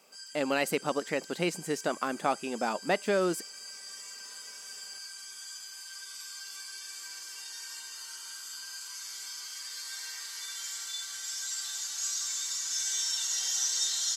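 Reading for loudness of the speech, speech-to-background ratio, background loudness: −31.0 LKFS, 4.0 dB, −35.0 LKFS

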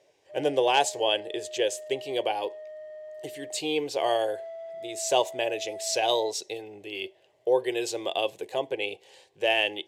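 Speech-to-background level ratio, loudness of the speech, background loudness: 13.5 dB, −28.0 LKFS, −41.5 LKFS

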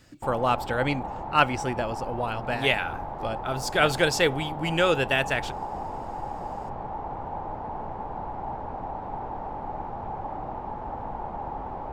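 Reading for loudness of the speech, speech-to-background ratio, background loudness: −26.0 LKFS, 9.0 dB, −35.0 LKFS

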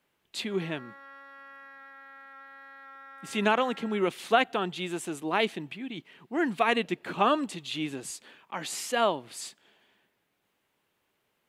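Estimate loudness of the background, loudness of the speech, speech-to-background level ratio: −48.0 LKFS, −29.5 LKFS, 18.5 dB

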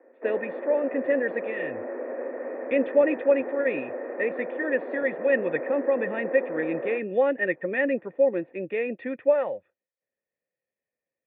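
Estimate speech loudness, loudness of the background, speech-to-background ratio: −26.5 LKFS, −34.0 LKFS, 7.5 dB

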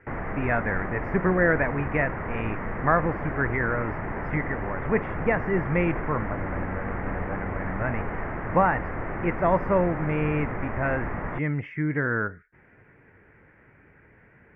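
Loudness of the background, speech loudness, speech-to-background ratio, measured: −32.5 LKFS, −27.5 LKFS, 5.0 dB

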